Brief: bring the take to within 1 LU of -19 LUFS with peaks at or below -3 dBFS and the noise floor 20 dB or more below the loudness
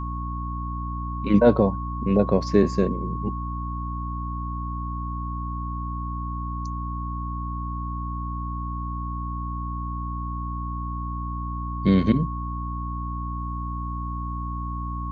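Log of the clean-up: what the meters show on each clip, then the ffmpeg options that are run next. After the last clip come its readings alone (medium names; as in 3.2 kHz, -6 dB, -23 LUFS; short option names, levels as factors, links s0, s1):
hum 60 Hz; highest harmonic 300 Hz; hum level -28 dBFS; steady tone 1.1 kHz; tone level -33 dBFS; loudness -27.0 LUFS; peak level -4.0 dBFS; loudness target -19.0 LUFS
-> -af "bandreject=f=60:t=h:w=4,bandreject=f=120:t=h:w=4,bandreject=f=180:t=h:w=4,bandreject=f=240:t=h:w=4,bandreject=f=300:t=h:w=4"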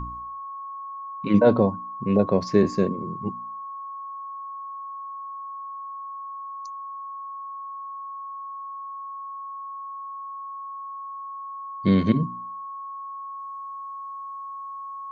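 hum not found; steady tone 1.1 kHz; tone level -33 dBFS
-> -af "bandreject=f=1100:w=30"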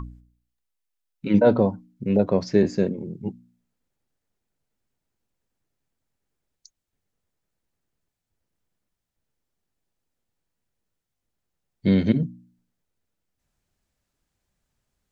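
steady tone not found; loudness -22.5 LUFS; peak level -5.0 dBFS; loudness target -19.0 LUFS
-> -af "volume=1.5,alimiter=limit=0.708:level=0:latency=1"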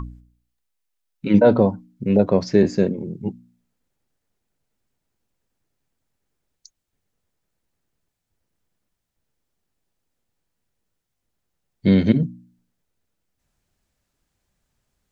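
loudness -19.0 LUFS; peak level -3.0 dBFS; noise floor -78 dBFS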